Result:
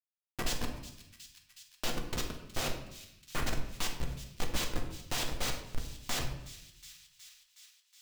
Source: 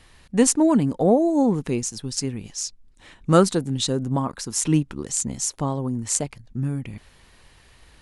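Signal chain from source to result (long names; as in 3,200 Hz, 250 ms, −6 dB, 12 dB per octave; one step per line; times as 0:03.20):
delay that plays each chunk backwards 187 ms, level −12 dB
Chebyshev high-pass filter 1,400 Hz, order 8
cochlear-implant simulation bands 4
comparator with hysteresis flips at −27.5 dBFS
pitch vibrato 6.3 Hz 60 cents
delay with a high-pass on its return 367 ms, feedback 65%, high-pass 2,800 Hz, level −18 dB
on a send at −2 dB: convolution reverb RT60 0.75 s, pre-delay 4 ms
on the sum: one half of a high-frequency compander encoder only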